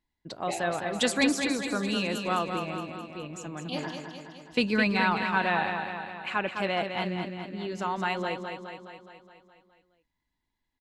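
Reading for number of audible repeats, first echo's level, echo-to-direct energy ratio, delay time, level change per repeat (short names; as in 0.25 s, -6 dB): 7, -6.5 dB, -4.5 dB, 0.209 s, -4.5 dB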